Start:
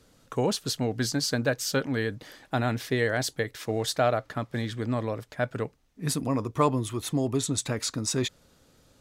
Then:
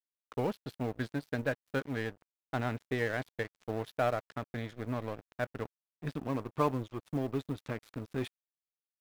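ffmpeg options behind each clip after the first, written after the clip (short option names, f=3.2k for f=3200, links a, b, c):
-af "lowpass=f=3.3k:w=0.5412,lowpass=f=3.3k:w=1.3066,aeval=exprs='sgn(val(0))*max(abs(val(0))-0.015,0)':c=same,acrusher=bits=8:mode=log:mix=0:aa=0.000001,volume=-5dB"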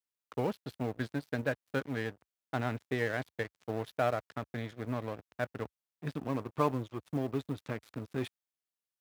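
-af "highpass=f=65:w=0.5412,highpass=f=65:w=1.3066"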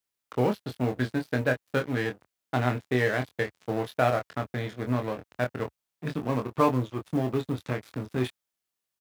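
-filter_complex "[0:a]asplit=2[a][b];[b]adelay=24,volume=-5dB[c];[a][c]amix=inputs=2:normalize=0,volume=6dB"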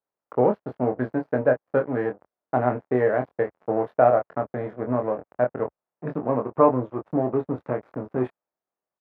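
-af "firequalizer=gain_entry='entry(100,0);entry(150,5);entry(580,14);entry(3500,-19);entry(9600,-28)':delay=0.05:min_phase=1,volume=-5dB"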